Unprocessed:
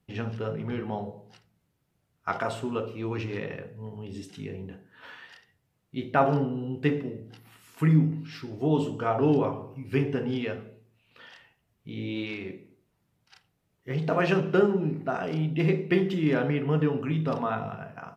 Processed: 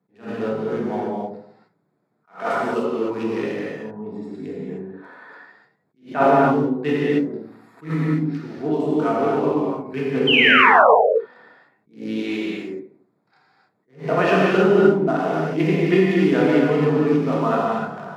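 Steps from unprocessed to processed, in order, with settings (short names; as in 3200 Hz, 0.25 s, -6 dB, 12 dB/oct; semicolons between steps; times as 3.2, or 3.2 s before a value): Wiener smoothing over 15 samples; HPF 180 Hz 24 dB/oct; 7.85–10.14 compressor, threshold -25 dBFS, peak gain reduction 7 dB; 10.27–10.94 painted sound fall 420–3200 Hz -22 dBFS; non-linear reverb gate 0.33 s flat, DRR -5 dB; attack slew limiter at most 200 dB/s; gain +3.5 dB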